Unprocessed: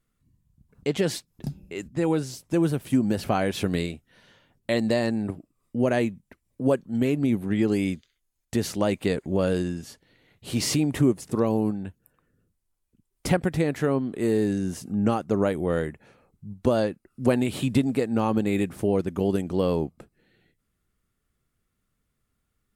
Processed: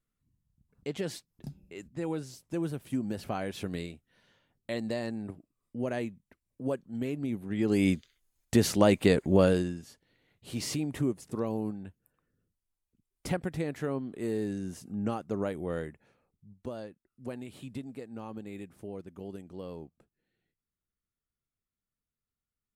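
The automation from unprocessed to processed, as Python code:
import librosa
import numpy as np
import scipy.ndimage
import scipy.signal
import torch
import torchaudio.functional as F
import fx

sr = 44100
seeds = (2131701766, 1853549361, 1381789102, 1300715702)

y = fx.gain(x, sr, db=fx.line((7.48, -10.0), (7.89, 2.0), (9.42, 2.0), (9.84, -9.0), (15.82, -9.0), (16.79, -18.0)))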